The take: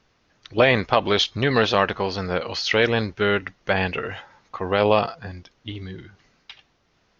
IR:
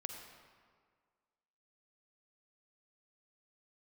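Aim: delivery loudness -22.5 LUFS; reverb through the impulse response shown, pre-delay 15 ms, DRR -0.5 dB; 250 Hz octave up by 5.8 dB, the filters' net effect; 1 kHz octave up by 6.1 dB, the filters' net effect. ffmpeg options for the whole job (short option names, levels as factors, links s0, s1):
-filter_complex "[0:a]equalizer=f=250:t=o:g=7,equalizer=f=1000:t=o:g=7.5,asplit=2[s0][s1];[1:a]atrim=start_sample=2205,adelay=15[s2];[s1][s2]afir=irnorm=-1:irlink=0,volume=1.33[s3];[s0][s3]amix=inputs=2:normalize=0,volume=0.398"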